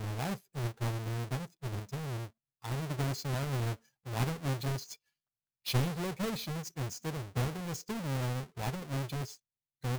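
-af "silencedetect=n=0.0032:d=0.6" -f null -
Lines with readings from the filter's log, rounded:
silence_start: 4.95
silence_end: 5.66 | silence_duration: 0.71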